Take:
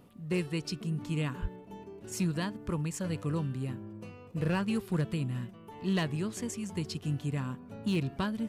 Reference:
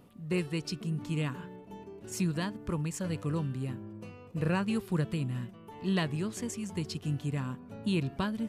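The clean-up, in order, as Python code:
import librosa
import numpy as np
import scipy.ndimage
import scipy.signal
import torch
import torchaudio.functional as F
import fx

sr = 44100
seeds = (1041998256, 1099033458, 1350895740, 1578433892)

y = fx.fix_declip(x, sr, threshold_db=-23.5)
y = fx.highpass(y, sr, hz=140.0, slope=24, at=(1.41, 1.53), fade=0.02)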